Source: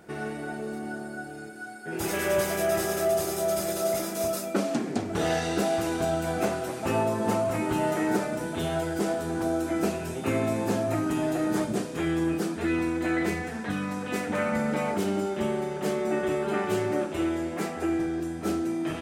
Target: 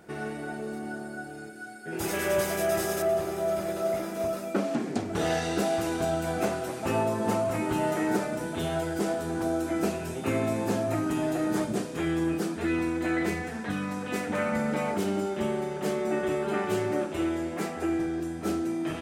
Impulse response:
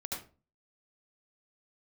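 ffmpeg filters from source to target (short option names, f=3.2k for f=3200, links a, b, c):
-filter_complex "[0:a]asettb=1/sr,asplit=3[a][b][c];[a]atrim=end=1.504[d];[b]atrim=start=1.5:end=1.93,asetpts=PTS-STARTPTS,afade=t=in:d=0.004:c=qsin,afade=t=out:st=0.426:d=0.004:c=qsin,equalizer=f=980:t=o:w=0.43:g=-8[e];[c]atrim=start=1.926[f];[d][e]acrossfade=d=0.004:c1=hsin:c2=qsin[g];[g][f]acrossfade=d=0.004:c1=qsin:c2=hsin,asettb=1/sr,asplit=3[h][i][j];[h]atrim=end=3.024[k];[i]atrim=start=3.02:end=4.85,asetpts=PTS-STARTPTS,afade=t=in:d=0.004:c=qsin,afade=t=out:st=1.826:d=0.004:c=qsin,acrossover=split=3000[l][m];[m]acompressor=threshold=-46dB:ratio=4:attack=1:release=60[n];[l][n]amix=inputs=2:normalize=0[o];[j]atrim=start=4.846[p];[k][o]acrossfade=d=0.004:c1=hsin:c2=qsin[q];[q][p]acrossfade=d=0.004:c1=qsin:c2=hsin,volume=-1dB"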